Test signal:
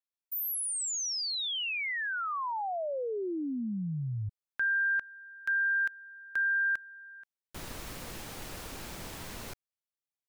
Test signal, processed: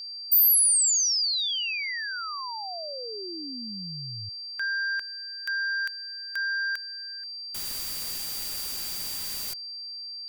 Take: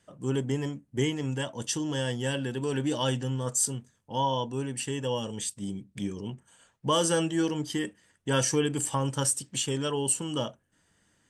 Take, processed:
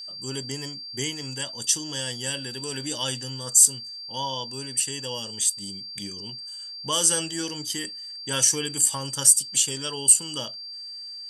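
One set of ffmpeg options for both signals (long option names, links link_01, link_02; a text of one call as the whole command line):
ffmpeg -i in.wav -af "crystalizer=i=7:c=0,aeval=exprs='val(0)+0.0355*sin(2*PI*4700*n/s)':channel_layout=same,volume=-6.5dB" out.wav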